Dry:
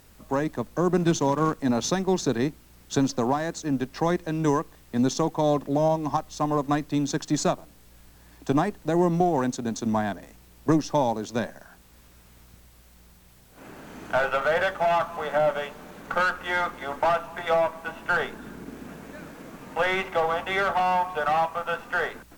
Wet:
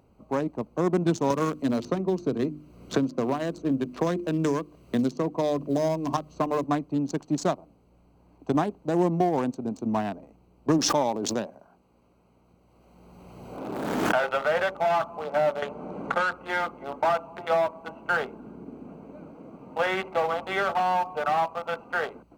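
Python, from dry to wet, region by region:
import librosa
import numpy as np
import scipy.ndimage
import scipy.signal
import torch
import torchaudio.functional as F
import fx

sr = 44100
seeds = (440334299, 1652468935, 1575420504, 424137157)

y = fx.chain(x, sr, fx.peak_eq(hz=830.0, db=-12.0, octaves=0.22),
    fx.hum_notches(base_hz=50, count=7),
    fx.band_squash(depth_pct=100), at=(1.3, 6.64))
y = fx.chain(y, sr, fx.low_shelf(hz=140.0, db=-8.5),
    fx.pre_swell(db_per_s=22.0), at=(10.78, 14.31))
y = fx.chain(y, sr, fx.lowpass(hz=11000.0, slope=24),
    fx.band_squash(depth_pct=70), at=(15.62, 16.33))
y = fx.wiener(y, sr, points=25)
y = fx.highpass(y, sr, hz=140.0, slope=6)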